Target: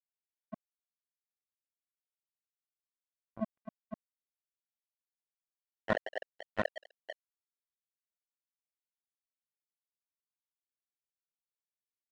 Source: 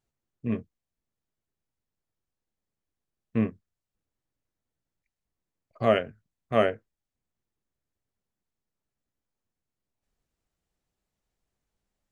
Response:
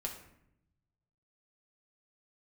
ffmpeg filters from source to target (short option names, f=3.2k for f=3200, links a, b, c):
-filter_complex "[0:a]asplit=2[a][b];[b]acrusher=bits=2:mode=log:mix=0:aa=0.000001,volume=-3dB[c];[a][c]amix=inputs=2:normalize=0,asplit=2[d][e];[e]adelay=49,volume=-8dB[f];[d][f]amix=inputs=2:normalize=0,aecho=1:1:162|173|188|253|328|502:0.473|0.15|0.119|0.473|0.282|0.531,dynaudnorm=f=190:g=13:m=4dB,afftfilt=real='re*gte(hypot(re,im),1)':imag='im*gte(hypot(re,im),1)':win_size=1024:overlap=0.75,highpass=f=69:w=0.5412,highpass=f=69:w=1.3066,areverse,acompressor=threshold=-33dB:ratio=4,areverse,acrusher=bits=3:mix=0:aa=0.5,volume=7dB"